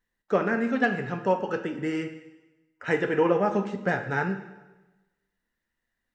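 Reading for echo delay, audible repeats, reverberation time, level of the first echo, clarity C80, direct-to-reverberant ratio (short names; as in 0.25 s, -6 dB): none, none, 1.1 s, none, 12.0 dB, 8.0 dB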